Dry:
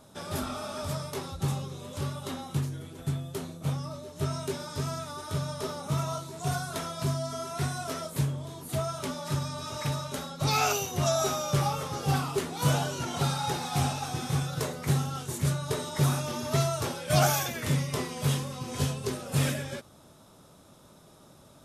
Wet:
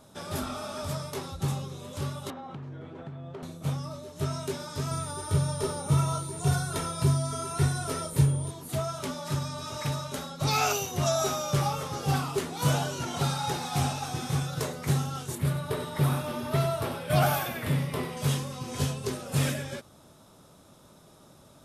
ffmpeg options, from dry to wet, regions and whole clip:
ffmpeg -i in.wav -filter_complex "[0:a]asettb=1/sr,asplit=3[link_01][link_02][link_03];[link_01]atrim=end=2.304[link_04];[link_02]atrim=start=2.3:end=3.43,asetpts=PTS-STARTPTS,afade=type=in:duration=0.004:curve=qsin,afade=type=out:start_time=1.126:duration=0.004:curve=qsin,highpass=100,lowpass=2300,equalizer=frequency=750:width=0.6:gain=5.5,acompressor=threshold=-36dB:ratio=12:attack=3.2:release=140:knee=1:detection=peak[link_05];[link_03]atrim=start=3.426[link_06];[link_04][link_05]acrossfade=duration=0.004:curve1=hsin:curve2=qsin[link_07];[link_07][link_06]acrossfade=duration=0.004:curve1=qsin:curve2=hsin,asettb=1/sr,asplit=3[link_08][link_09][link_10];[link_08]atrim=end=4.914[link_11];[link_09]atrim=start=4.91:end=8.51,asetpts=PTS-STARTPTS,afade=type=in:duration=0.004:curve=qsin,afade=type=out:start_time=3.596:duration=0.004:curve=qsin,lowshelf=frequency=320:gain=8,aecho=1:1:2.2:0.4,atrim=end_sample=158760,aeval=exprs='val(0)+0.00891*sin(2*PI*9100*n/s)':channel_layout=same[link_12];[link_10]atrim=start=8.506[link_13];[link_11][link_12]acrossfade=duration=0.004:curve1=hsin:curve2=qsin[link_14];[link_14][link_13]acrossfade=duration=0.004:curve1=qsin:curve2=hsin,asettb=1/sr,asplit=3[link_15][link_16][link_17];[link_15]atrim=end=15.354[link_18];[link_16]atrim=start=15.35:end=18.17,asetpts=PTS-STARTPTS,afade=type=in:duration=0.004:curve=qsin,afade=type=out:start_time=2.816:duration=0.004:curve=qsin,equalizer=frequency=6400:width_type=o:width=0.85:gain=-13.5,aecho=1:1:96|192|288|384:0.335|0.124|0.0459|0.017,atrim=end_sample=124362[link_19];[link_17]atrim=start=18.166[link_20];[link_18][link_19]acrossfade=duration=0.004:curve1=hsin:curve2=qsin[link_21];[link_21][link_20]acrossfade=duration=0.004:curve1=qsin:curve2=hsin" out.wav

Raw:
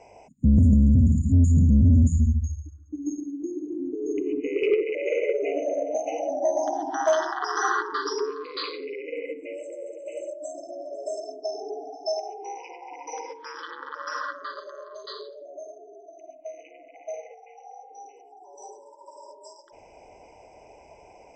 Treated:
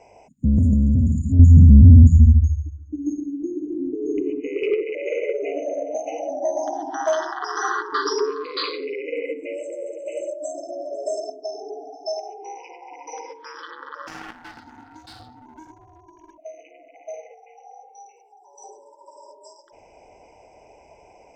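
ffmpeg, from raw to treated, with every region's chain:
ffmpeg -i in.wav -filter_complex "[0:a]asettb=1/sr,asplit=3[link_01][link_02][link_03];[link_01]atrim=end=1.394[link_04];[link_02]atrim=start=1.39:end=4.3,asetpts=PTS-STARTPTS,afade=type=in:duration=0.004:curve=qsin,afade=type=out:start_time=2.906:duration=0.004:curve=qsin,lowpass=5600,lowshelf=frequency=240:gain=11[link_05];[link_03]atrim=start=4.296[link_06];[link_04][link_05]acrossfade=duration=0.004:curve1=hsin:curve2=qsin[link_07];[link_07][link_06]acrossfade=duration=0.004:curve1=qsin:curve2=hsin,asettb=1/sr,asplit=3[link_08][link_09][link_10];[link_08]atrim=end=7.924[link_11];[link_09]atrim=start=7.92:end=11.3,asetpts=PTS-STARTPTS,afade=type=in:duration=0.004:curve=qsin,afade=type=out:start_time=3.376:duration=0.004:curve=qsin,acontrast=34,highpass=120[link_12];[link_10]atrim=start=11.296[link_13];[link_11][link_12]acrossfade=duration=0.004:curve1=hsin:curve2=qsin[link_14];[link_14][link_13]acrossfade=duration=0.004:curve1=qsin:curve2=hsin,asettb=1/sr,asplit=3[link_15][link_16][link_17];[link_15]atrim=end=14.074[link_18];[link_16]atrim=start=14.07:end=16.38,asetpts=PTS-STARTPTS,afade=type=in:duration=0.004:curve=qsin,afade=type=out:start_time=2.306:duration=0.004:curve=qsin,aeval=exprs='clip(val(0),-1,0.00668)':channel_layout=same,aeval=exprs='val(0)*sin(2*PI*320*n/s)':channel_layout=same[link_19];[link_17]atrim=start=16.376[link_20];[link_18][link_19]acrossfade=duration=0.004:curve1=hsin:curve2=qsin[link_21];[link_21][link_20]acrossfade=duration=0.004:curve1=qsin:curve2=hsin,asettb=1/sr,asplit=3[link_22][link_23][link_24];[link_22]atrim=end=17.894[link_25];[link_23]atrim=start=17.89:end=18.64,asetpts=PTS-STARTPTS,afade=type=in:duration=0.004:curve=qsin,afade=type=out:start_time=0.746:duration=0.004:curve=qsin,highpass=800,aecho=1:1:2.2:0.81,atrim=end_sample=33075[link_26];[link_24]atrim=start=18.636[link_27];[link_25][link_26]acrossfade=duration=0.004:curve1=hsin:curve2=qsin[link_28];[link_28][link_27]acrossfade=duration=0.004:curve1=qsin:curve2=hsin" out.wav

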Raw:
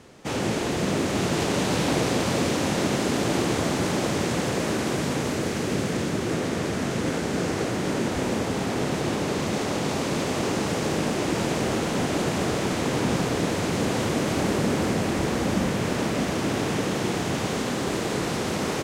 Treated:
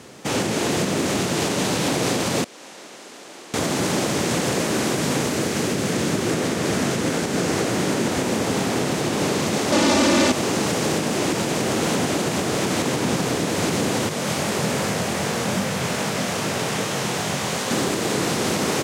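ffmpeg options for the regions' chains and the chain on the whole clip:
ffmpeg -i in.wav -filter_complex "[0:a]asettb=1/sr,asplit=3[link_01][link_02][link_03];[link_01]atrim=end=2.444[link_04];[link_02]atrim=start=2.44:end=3.54,asetpts=PTS-STARTPTS,afade=type=in:duration=0.004:curve=qsin,afade=type=out:start_time=1.096:duration=0.004:curve=qsin,bandpass=frequency=370:width_type=q:width=0.51,aderivative[link_05];[link_03]atrim=start=3.536[link_06];[link_04][link_05]acrossfade=duration=0.004:curve1=hsin:curve2=qsin[link_07];[link_07][link_06]acrossfade=duration=0.004:curve1=qsin:curve2=hsin,asettb=1/sr,asplit=3[link_08][link_09][link_10];[link_08]atrim=end=9.724[link_11];[link_09]atrim=start=9.72:end=10.32,asetpts=PTS-STARTPTS,afade=type=in:duration=0.004:curve=qsin,afade=type=out:start_time=0.596:duration=0.004:curve=qsin,acrossover=split=8300[link_12][link_13];[link_13]acompressor=threshold=-59dB:ratio=4:attack=1:release=60[link_14];[link_12][link_14]amix=inputs=2:normalize=0,aecho=1:1:3.4:0.83,atrim=end_sample=26460,aeval=exprs='0.237*sin(PI/2*1.78*val(0)/0.237)':channel_layout=same[link_15];[link_10]atrim=start=10.316[link_16];[link_11][link_15]acrossfade=duration=0.004:curve1=hsin:curve2=qsin[link_17];[link_17][link_16]acrossfade=duration=0.004:curve1=qsin:curve2=hsin,asettb=1/sr,asplit=3[link_18][link_19][link_20];[link_18]atrim=end=14.094[link_21];[link_19]atrim=start=14.09:end=17.71,asetpts=PTS-STARTPTS,afade=type=in:duration=0.004:curve=qsin,afade=type=out:start_time=3.616:duration=0.004:curve=qsin,highpass=85,equalizer=frequency=300:width=1.9:gain=-9.5,flanger=delay=19:depth=5.3:speed=2.5[link_22];[link_20]atrim=start=17.706[link_23];[link_21][link_22]acrossfade=duration=0.004:curve1=hsin:curve2=qsin[link_24];[link_24][link_23]acrossfade=duration=0.004:curve1=qsin:curve2=hsin,alimiter=limit=-19dB:level=0:latency=1:release=234,highpass=100,highshelf=frequency=4700:gain=6,volume=6.5dB" out.wav

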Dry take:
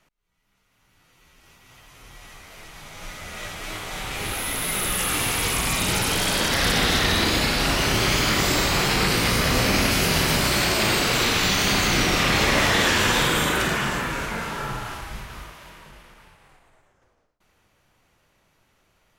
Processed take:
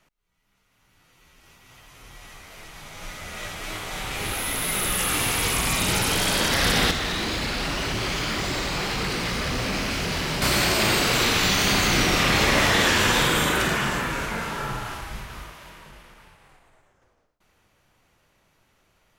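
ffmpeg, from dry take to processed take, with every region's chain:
ffmpeg -i in.wav -filter_complex "[0:a]asettb=1/sr,asplit=3[link_01][link_02][link_03];[link_01]atrim=end=6.914[link_04];[link_02]atrim=start=6.91:end=10.42,asetpts=PTS-STARTPTS,afade=type=in:duration=0.004:curve=qsin,afade=type=out:start_time=3.506:duration=0.004:curve=qsin,flanger=delay=0.1:depth=6.9:regen=-44:speed=1.9:shape=triangular,acrossover=split=6900[link_05][link_06];[link_06]acompressor=threshold=-45dB:ratio=4:attack=1:release=60[link_07];[link_05][link_07]amix=inputs=2:normalize=0,asoftclip=type=hard:threshold=-23dB[link_08];[link_03]atrim=start=10.416[link_09];[link_04][link_08]acrossfade=duration=0.004:curve1=hsin:curve2=qsin[link_10];[link_10][link_09]acrossfade=duration=0.004:curve1=qsin:curve2=hsin" out.wav

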